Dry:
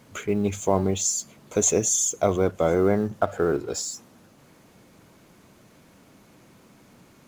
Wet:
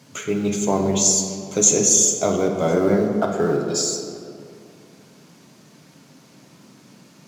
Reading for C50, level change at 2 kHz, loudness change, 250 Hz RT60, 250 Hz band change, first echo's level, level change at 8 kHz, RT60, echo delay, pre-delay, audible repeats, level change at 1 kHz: 4.5 dB, +2.5 dB, +5.0 dB, 2.6 s, +5.0 dB, no echo audible, +7.5 dB, 2.4 s, no echo audible, 7 ms, no echo audible, +2.0 dB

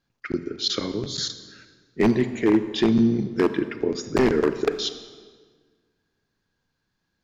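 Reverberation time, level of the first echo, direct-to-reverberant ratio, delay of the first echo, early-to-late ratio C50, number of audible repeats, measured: 1.6 s, no echo audible, 11.0 dB, no echo audible, 11.5 dB, no echo audible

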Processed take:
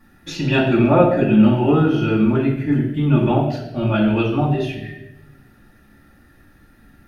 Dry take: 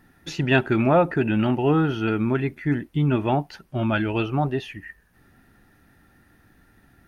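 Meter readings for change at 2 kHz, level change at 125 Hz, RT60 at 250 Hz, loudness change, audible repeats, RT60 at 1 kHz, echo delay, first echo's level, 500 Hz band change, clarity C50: +1.0 dB, +5.5 dB, 1.1 s, +5.5 dB, no echo audible, 0.75 s, no echo audible, no echo audible, +5.0 dB, 4.5 dB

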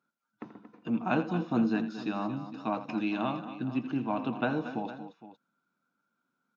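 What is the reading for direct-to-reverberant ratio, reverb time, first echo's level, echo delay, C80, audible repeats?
no reverb audible, no reverb audible, −13.0 dB, 84 ms, no reverb audible, 3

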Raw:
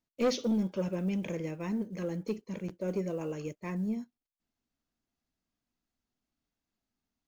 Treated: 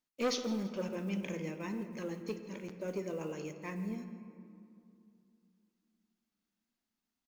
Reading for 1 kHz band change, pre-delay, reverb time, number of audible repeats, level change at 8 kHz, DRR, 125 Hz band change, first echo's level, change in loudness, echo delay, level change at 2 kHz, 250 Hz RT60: −1.5 dB, 3 ms, 2.7 s, 2, can't be measured, 8.0 dB, −6.0 dB, −18.5 dB, −4.5 dB, 165 ms, 0.0 dB, 3.4 s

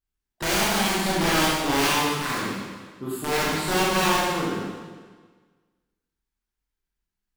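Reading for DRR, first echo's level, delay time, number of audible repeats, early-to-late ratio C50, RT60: −7.5 dB, no echo audible, no echo audible, no echo audible, −2.0 dB, 1.5 s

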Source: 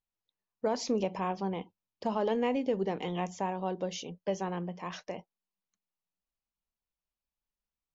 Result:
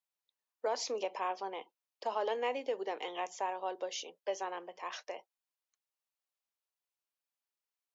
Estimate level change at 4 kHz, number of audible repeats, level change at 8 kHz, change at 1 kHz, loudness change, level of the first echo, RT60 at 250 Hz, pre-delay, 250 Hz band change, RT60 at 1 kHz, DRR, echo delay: 0.0 dB, no echo audible, can't be measured, −1.5 dB, −4.5 dB, no echo audible, no reverb audible, no reverb audible, −16.5 dB, no reverb audible, no reverb audible, no echo audible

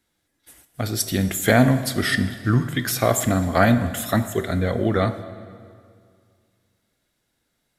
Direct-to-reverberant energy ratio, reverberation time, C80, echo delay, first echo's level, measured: 10.5 dB, 2.1 s, 13.0 dB, no echo audible, no echo audible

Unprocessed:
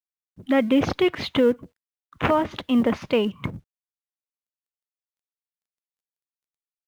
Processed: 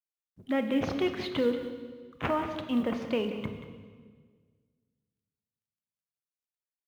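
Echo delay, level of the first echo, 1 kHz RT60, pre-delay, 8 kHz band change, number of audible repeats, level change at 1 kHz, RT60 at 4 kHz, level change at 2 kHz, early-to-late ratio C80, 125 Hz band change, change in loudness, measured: 183 ms, −11.5 dB, 1.5 s, 23 ms, can't be measured, 1, −8.0 dB, 1.4 s, −8.0 dB, 7.0 dB, −8.0 dB, −8.5 dB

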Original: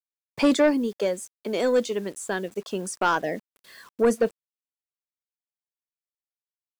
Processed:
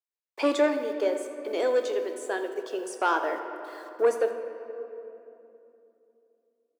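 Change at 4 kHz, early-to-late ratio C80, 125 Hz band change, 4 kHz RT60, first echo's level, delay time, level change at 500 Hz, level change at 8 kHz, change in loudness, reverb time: −5.0 dB, 8.0 dB, below −25 dB, 1.8 s, −15.5 dB, 83 ms, −1.0 dB, −7.5 dB, −3.5 dB, 2.9 s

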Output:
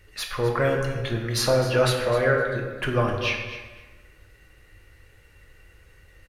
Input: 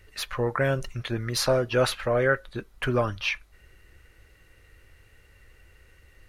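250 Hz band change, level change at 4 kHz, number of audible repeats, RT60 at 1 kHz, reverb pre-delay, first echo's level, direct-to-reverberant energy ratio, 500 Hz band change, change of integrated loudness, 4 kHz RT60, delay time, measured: +2.0 dB, +2.5 dB, 2, 1.3 s, 3 ms, −12.5 dB, 1.0 dB, +3.0 dB, +2.5 dB, 1.0 s, 256 ms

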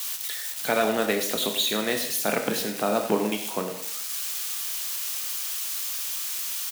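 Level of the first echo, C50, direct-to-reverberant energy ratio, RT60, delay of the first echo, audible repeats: −12.5 dB, 7.5 dB, 4.5 dB, 0.65 s, 100 ms, 1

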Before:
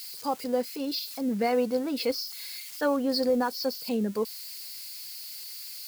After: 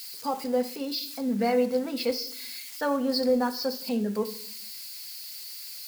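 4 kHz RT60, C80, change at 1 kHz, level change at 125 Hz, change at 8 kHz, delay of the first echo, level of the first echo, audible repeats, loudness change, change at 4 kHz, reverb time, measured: 0.80 s, 16.5 dB, +0.5 dB, can't be measured, +0.5 dB, no echo audible, no echo audible, no echo audible, +0.5 dB, +0.5 dB, 0.60 s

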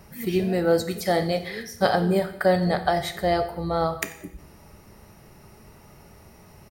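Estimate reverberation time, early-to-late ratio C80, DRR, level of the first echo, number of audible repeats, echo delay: 0.75 s, 14.0 dB, 8.0 dB, −19.5 dB, 1, 90 ms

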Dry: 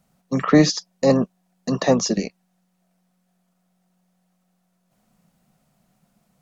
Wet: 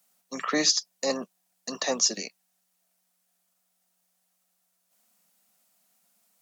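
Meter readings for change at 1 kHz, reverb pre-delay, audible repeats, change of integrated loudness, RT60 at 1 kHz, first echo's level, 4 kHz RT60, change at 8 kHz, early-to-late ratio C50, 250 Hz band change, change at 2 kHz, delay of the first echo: −7.5 dB, no reverb audible, no echo audible, −6.0 dB, no reverb audible, no echo audible, no reverb audible, can't be measured, no reverb audible, −15.5 dB, −4.0 dB, no echo audible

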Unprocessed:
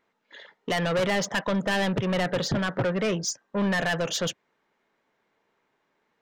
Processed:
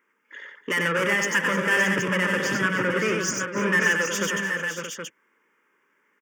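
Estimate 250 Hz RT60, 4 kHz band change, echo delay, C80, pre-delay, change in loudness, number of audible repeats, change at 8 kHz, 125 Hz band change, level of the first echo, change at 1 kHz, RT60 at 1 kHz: no reverb audible, +0.5 dB, 93 ms, no reverb audible, no reverb audible, +3.5 dB, 5, +4.5 dB, −2.0 dB, −4.0 dB, +2.5 dB, no reverb audible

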